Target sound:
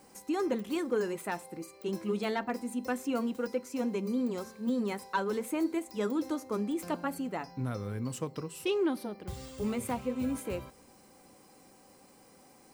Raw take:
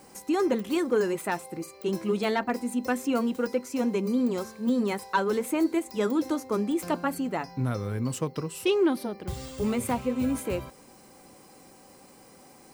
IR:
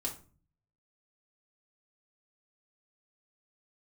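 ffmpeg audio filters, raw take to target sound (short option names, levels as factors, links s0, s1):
-filter_complex "[0:a]asplit=2[s0][s1];[1:a]atrim=start_sample=2205,asetrate=31311,aresample=44100[s2];[s1][s2]afir=irnorm=-1:irlink=0,volume=0.0891[s3];[s0][s3]amix=inputs=2:normalize=0,volume=0.473"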